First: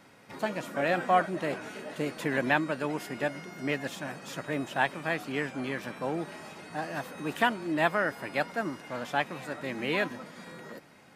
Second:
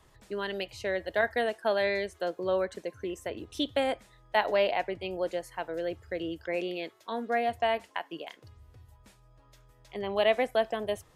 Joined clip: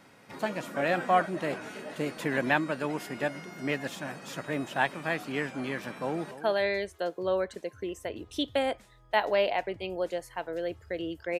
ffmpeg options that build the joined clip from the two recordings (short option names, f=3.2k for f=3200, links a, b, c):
-filter_complex "[0:a]apad=whole_dur=11.39,atrim=end=11.39,atrim=end=6.312[a];[1:a]atrim=start=1.518:end=6.6[b];[a][b]acrossfade=d=0.004:c1=hsin:c2=hsin,asplit=2[c][d];[d]afade=t=in:st=5.99:d=0.01,afade=t=out:st=6.31:d=0.01,aecho=0:1:290|580:0.199526|0.0299289[e];[c][e]amix=inputs=2:normalize=0"